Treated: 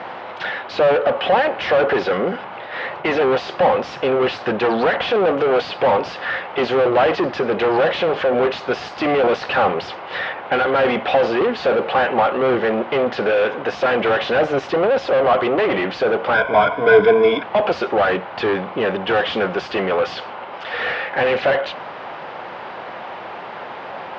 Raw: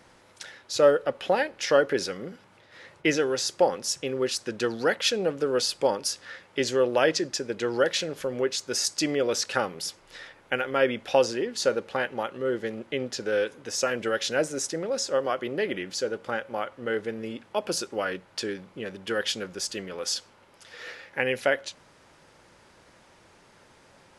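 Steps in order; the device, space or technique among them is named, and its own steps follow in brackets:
overdrive pedal into a guitar cabinet (mid-hump overdrive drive 36 dB, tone 1,100 Hz, clips at −7.5 dBFS; loudspeaker in its box 82–3,900 Hz, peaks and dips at 300 Hz −3 dB, 740 Hz +8 dB, 1,100 Hz +3 dB, 2,900 Hz +3 dB)
0:16.34–0:17.43: EQ curve with evenly spaced ripples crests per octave 1.7, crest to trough 18 dB
level −1 dB

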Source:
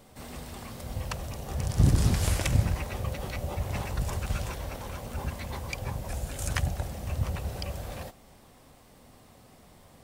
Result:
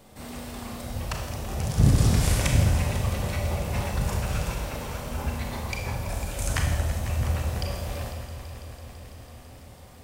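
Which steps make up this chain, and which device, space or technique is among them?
multi-head tape echo (echo machine with several playback heads 166 ms, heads all three, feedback 72%, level −17.5 dB; tape wow and flutter 10 cents)
four-comb reverb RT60 1 s, combs from 26 ms, DRR 1.5 dB
level +1.5 dB

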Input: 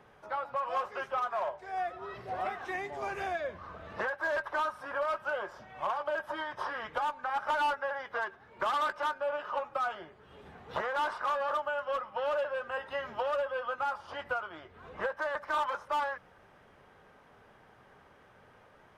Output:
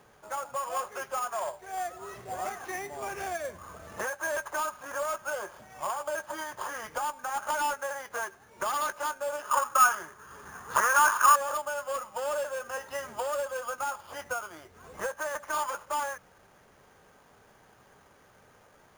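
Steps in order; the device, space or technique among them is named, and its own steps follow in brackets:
0:09.51–0:11.36: flat-topped bell 1,300 Hz +13 dB 1.1 octaves
early companding sampler (sample-rate reduction 8,000 Hz, jitter 0%; log-companded quantiser 6 bits)

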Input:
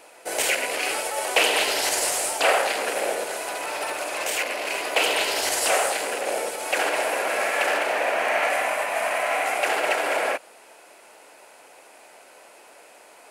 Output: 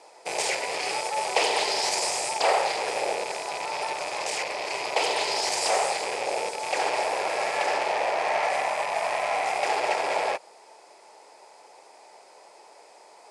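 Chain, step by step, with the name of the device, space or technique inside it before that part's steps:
car door speaker with a rattle (loose part that buzzes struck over −47 dBFS, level −16 dBFS; loudspeaker in its box 110–8,800 Hz, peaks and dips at 260 Hz −8 dB, 410 Hz +4 dB, 870 Hz +8 dB, 1,500 Hz −8 dB, 2,800 Hz −7 dB, 5,000 Hz +7 dB)
level −3.5 dB

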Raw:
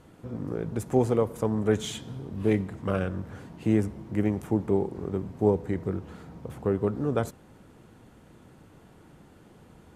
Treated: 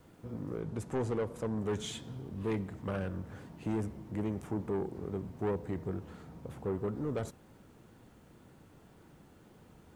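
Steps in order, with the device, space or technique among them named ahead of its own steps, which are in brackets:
compact cassette (soft clipping −22.5 dBFS, distortion −9 dB; low-pass filter 11,000 Hz; tape wow and flutter; white noise bed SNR 39 dB)
0:00.60–0:01.58: Bessel low-pass filter 11,000 Hz, order 2
level −5 dB

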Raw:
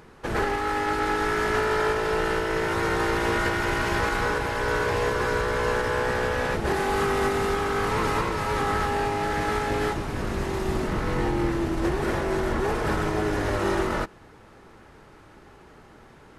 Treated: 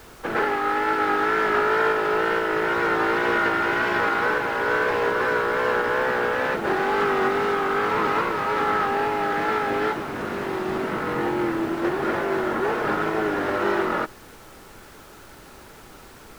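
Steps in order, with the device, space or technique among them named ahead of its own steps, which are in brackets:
horn gramophone (band-pass filter 220–3,400 Hz; parametric band 1,400 Hz +5 dB 0.25 octaves; tape wow and flutter; pink noise bed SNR 24 dB)
level +2.5 dB

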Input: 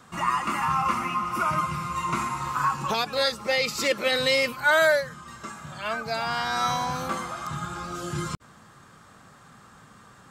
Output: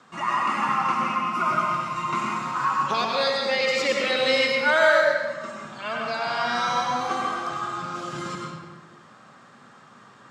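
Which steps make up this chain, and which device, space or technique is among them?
supermarket ceiling speaker (band-pass filter 200–5,800 Hz; convolution reverb RT60 1.3 s, pre-delay 92 ms, DRR −1 dB)
0:07.00–0:07.82: comb filter 2.6 ms, depth 61%
level −1 dB

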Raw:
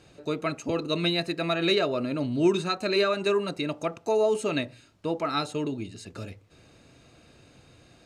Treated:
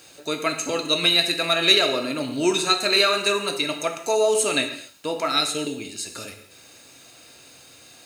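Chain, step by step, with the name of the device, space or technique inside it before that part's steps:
turntable without a phono preamp (RIAA equalisation recording; white noise bed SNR 37 dB)
0:05.32–0:05.73: parametric band 1,000 Hz −15 dB 0.38 octaves
reverb whose tail is shaped and stops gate 280 ms falling, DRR 5 dB
level +4.5 dB

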